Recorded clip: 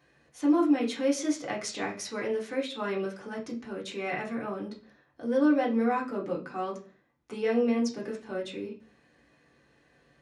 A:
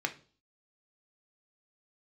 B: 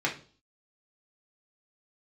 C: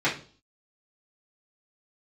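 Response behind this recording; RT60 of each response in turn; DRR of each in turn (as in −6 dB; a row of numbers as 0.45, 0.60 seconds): B; 0.40, 0.40, 0.40 seconds; 4.5, −3.5, −10.0 decibels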